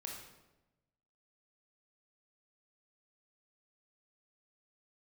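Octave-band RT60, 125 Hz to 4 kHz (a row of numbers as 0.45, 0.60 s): 1.4, 1.2, 1.1, 0.95, 0.80, 0.75 s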